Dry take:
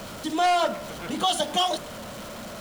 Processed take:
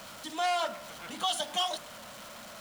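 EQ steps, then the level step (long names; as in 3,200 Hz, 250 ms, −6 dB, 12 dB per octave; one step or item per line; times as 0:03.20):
low-shelf EQ 250 Hz −12 dB
parametric band 400 Hz −7.5 dB 0.99 octaves
−5.0 dB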